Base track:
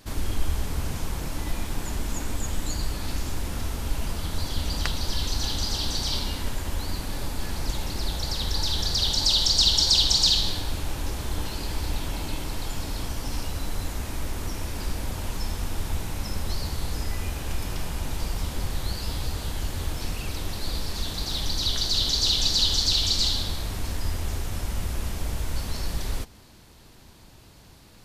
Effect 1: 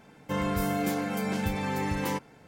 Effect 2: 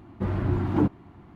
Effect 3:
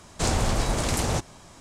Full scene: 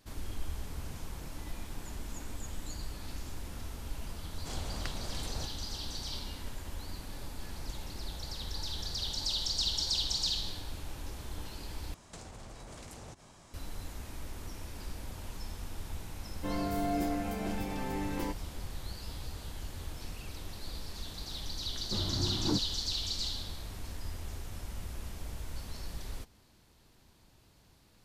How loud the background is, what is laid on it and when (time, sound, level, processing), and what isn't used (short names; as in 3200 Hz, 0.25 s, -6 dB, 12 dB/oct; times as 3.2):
base track -12 dB
4.26 add 3 -18 dB
11.94 replace with 3 -8 dB + compressor 16:1, threshold -35 dBFS
16.14 add 1 -10 dB + small resonant body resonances 330/660 Hz, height 11 dB, ringing for 30 ms
21.71 add 2 -9.5 dB + vibrato 1.8 Hz 62 cents